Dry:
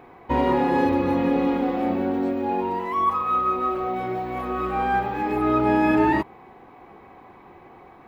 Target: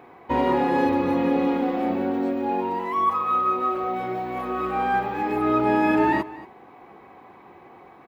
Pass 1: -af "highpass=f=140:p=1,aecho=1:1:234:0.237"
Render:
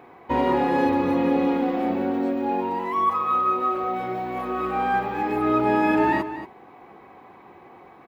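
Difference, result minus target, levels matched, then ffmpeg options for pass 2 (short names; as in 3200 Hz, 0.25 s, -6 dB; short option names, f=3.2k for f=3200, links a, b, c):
echo-to-direct +6 dB
-af "highpass=f=140:p=1,aecho=1:1:234:0.119"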